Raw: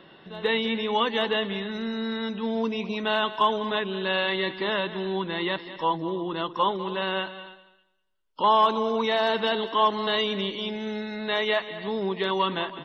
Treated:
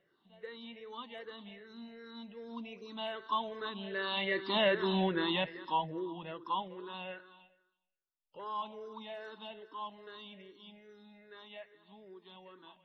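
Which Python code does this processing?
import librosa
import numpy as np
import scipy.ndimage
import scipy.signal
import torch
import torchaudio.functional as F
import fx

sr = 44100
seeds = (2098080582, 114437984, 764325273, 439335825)

y = fx.spec_ripple(x, sr, per_octave=0.51, drift_hz=-2.5, depth_db=14)
y = fx.doppler_pass(y, sr, speed_mps=9, closest_m=2.8, pass_at_s=4.93)
y = y * librosa.db_to_amplitude(-2.0)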